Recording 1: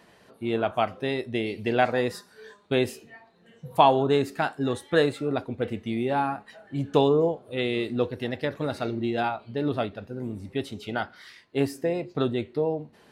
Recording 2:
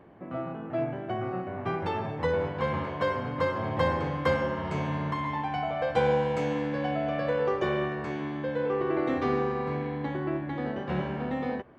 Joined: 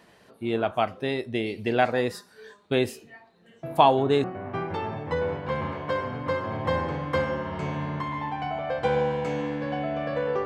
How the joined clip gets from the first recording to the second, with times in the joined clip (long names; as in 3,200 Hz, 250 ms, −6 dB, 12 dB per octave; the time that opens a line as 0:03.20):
recording 1
0:03.63: mix in recording 2 from 0:00.75 0.61 s −8 dB
0:04.24: continue with recording 2 from 0:01.36